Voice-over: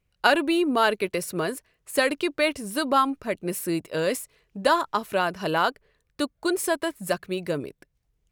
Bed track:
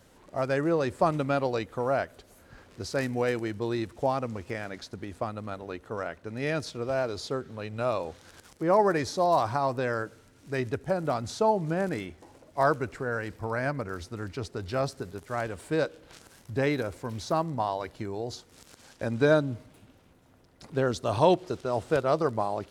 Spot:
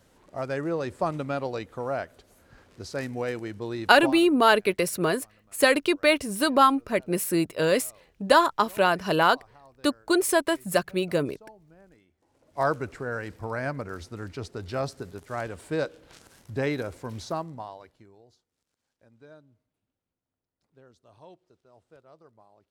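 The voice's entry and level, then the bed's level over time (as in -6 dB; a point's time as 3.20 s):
3.65 s, +2.5 dB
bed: 4.05 s -3 dB
4.34 s -26.5 dB
12.08 s -26.5 dB
12.61 s -1 dB
17.21 s -1 dB
18.54 s -29 dB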